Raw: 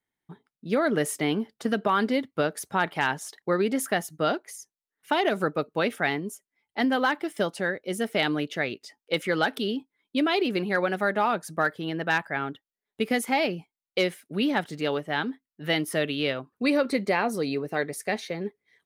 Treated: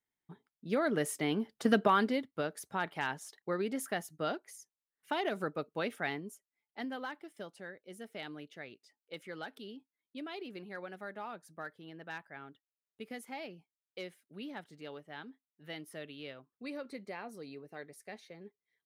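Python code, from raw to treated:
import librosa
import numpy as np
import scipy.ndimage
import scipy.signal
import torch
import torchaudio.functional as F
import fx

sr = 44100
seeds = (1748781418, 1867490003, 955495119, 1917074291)

y = fx.gain(x, sr, db=fx.line((1.29, -7.0), (1.76, 0.0), (2.28, -10.0), (6.11, -10.0), (7.31, -19.0)))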